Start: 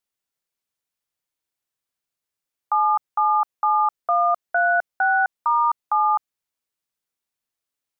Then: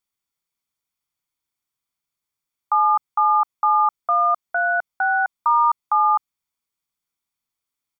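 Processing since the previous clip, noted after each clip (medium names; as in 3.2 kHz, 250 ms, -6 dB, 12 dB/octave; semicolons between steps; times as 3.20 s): comb 0.9 ms, depth 43%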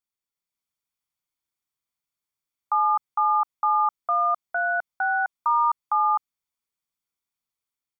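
level rider gain up to 4 dB; trim -8 dB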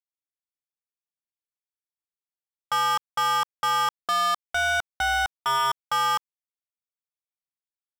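waveshaping leveller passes 5; trim -7 dB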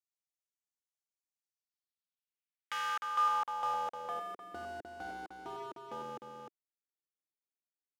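integer overflow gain 24 dB; delay 304 ms -5.5 dB; band-pass sweep 6.7 kHz -> 340 Hz, 1.39–4.57 s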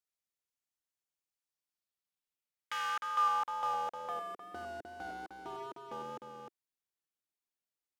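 wow and flutter 28 cents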